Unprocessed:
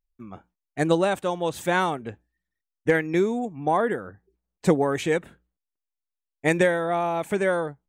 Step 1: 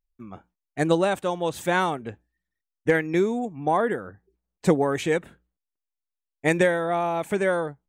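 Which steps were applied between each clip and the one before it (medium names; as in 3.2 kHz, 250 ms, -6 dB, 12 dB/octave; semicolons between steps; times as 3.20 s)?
no audible change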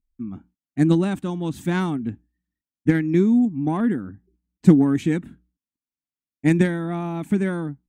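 Chebyshev shaper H 3 -22 dB, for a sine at -8 dBFS; resonant low shelf 370 Hz +11 dB, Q 3; trim -3 dB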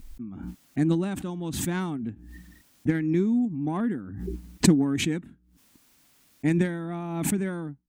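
swell ahead of each attack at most 42 dB/s; trim -6.5 dB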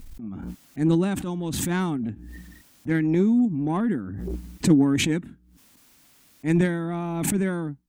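transient shaper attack -11 dB, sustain +1 dB; trim +4.5 dB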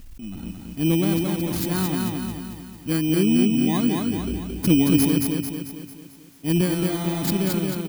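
bit-reversed sample order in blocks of 16 samples; on a send: feedback delay 222 ms, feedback 50%, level -3 dB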